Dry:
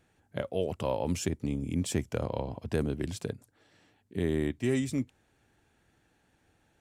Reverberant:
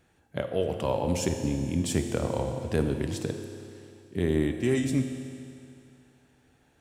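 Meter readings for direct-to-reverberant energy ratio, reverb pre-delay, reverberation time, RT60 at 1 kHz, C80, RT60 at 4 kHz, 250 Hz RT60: 5.5 dB, 9 ms, 2.5 s, 2.5 s, 7.5 dB, 2.5 s, 2.5 s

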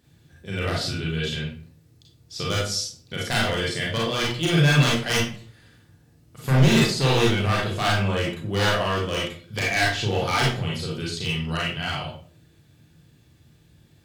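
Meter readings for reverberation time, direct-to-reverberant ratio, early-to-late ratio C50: 0.50 s, -5.0 dB, 2.0 dB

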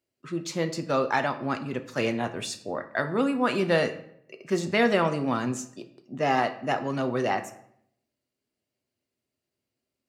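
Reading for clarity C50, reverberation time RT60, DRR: 13.0 dB, 0.70 s, 7.0 dB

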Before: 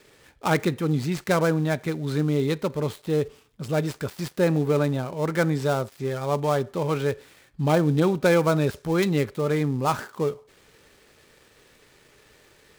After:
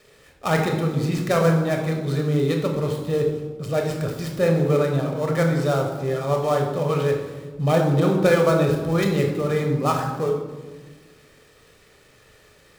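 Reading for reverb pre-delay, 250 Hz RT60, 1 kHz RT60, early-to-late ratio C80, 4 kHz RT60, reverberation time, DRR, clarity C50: 26 ms, 2.1 s, 1.2 s, 7.5 dB, 0.80 s, 1.4 s, 2.0 dB, 5.0 dB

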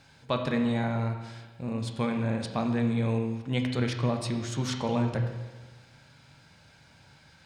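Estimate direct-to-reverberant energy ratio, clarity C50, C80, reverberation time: 3.5 dB, 6.0 dB, 8.0 dB, 1.3 s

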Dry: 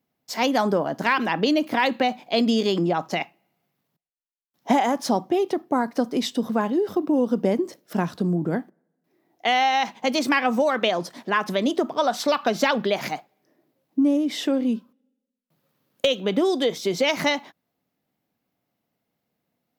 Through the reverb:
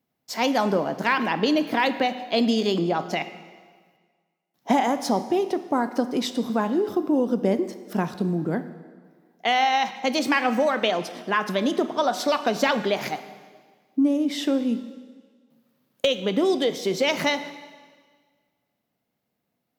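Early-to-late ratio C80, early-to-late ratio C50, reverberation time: 13.5 dB, 12.5 dB, 1.6 s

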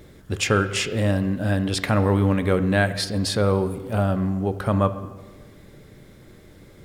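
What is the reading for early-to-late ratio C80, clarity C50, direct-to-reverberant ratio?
14.5 dB, 12.5 dB, 10.0 dB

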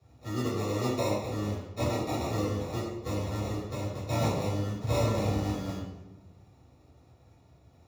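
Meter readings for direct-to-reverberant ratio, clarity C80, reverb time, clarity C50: -12.0 dB, 3.5 dB, 1.1 s, 1.0 dB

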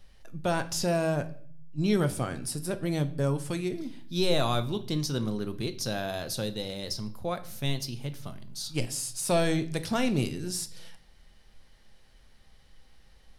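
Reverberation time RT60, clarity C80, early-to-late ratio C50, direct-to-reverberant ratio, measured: 0.50 s, 20.0 dB, 15.5 dB, 9.0 dB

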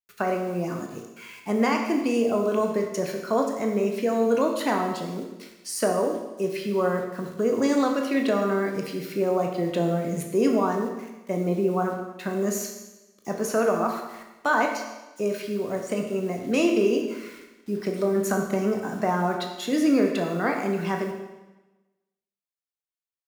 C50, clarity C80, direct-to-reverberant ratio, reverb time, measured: 5.0 dB, 7.0 dB, 2.0 dB, 1.1 s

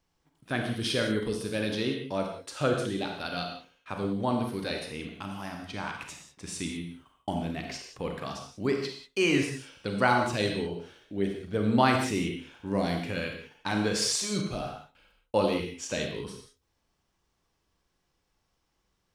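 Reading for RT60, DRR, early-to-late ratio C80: not exponential, 2.5 dB, 6.5 dB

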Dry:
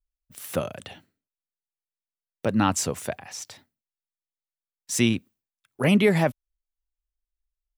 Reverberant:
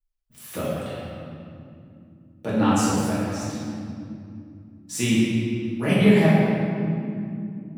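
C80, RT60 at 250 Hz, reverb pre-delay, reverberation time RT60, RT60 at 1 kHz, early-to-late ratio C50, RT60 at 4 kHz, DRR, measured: -1.0 dB, 4.9 s, 3 ms, 2.7 s, 2.3 s, -3.0 dB, 1.6 s, -10.0 dB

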